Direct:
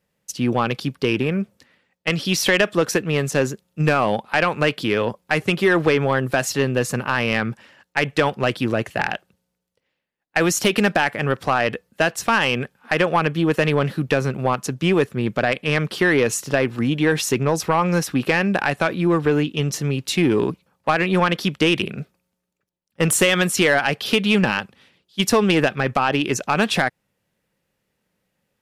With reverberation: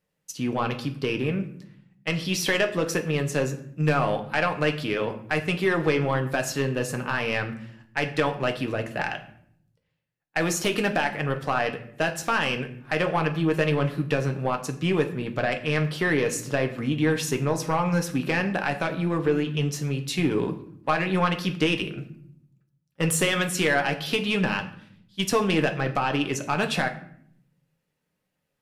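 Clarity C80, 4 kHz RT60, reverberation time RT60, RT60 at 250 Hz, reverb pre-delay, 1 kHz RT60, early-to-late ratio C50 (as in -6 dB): 15.5 dB, 0.45 s, 0.65 s, 1.1 s, 6 ms, 0.55 s, 12.5 dB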